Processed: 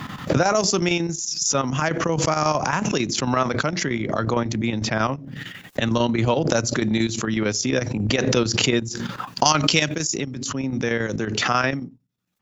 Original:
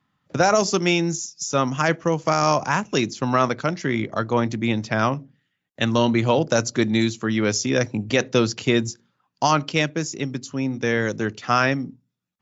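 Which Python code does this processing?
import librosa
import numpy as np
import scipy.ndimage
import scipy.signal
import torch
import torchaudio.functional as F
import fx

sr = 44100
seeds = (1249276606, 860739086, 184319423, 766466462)

y = fx.high_shelf(x, sr, hz=fx.line((9.44, 2400.0), (10.16, 3600.0)), db=12.0, at=(9.44, 10.16), fade=0.02)
y = fx.chopper(y, sr, hz=11.0, depth_pct=65, duty_pct=75)
y = fx.pre_swell(y, sr, db_per_s=28.0)
y = y * 10.0 ** (-1.5 / 20.0)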